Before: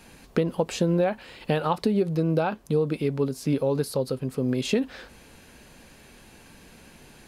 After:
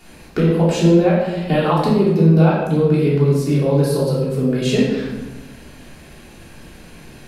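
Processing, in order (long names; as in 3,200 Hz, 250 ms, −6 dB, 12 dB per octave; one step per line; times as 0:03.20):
rectangular room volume 630 cubic metres, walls mixed, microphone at 3.3 metres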